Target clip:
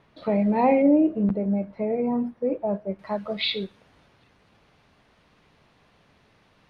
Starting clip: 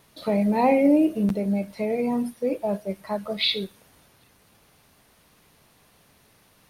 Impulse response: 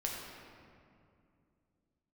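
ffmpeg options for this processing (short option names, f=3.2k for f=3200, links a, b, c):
-af "asetnsamples=n=441:p=0,asendcmd='0.82 lowpass f 1400;2.99 lowpass f 3600',lowpass=2.5k"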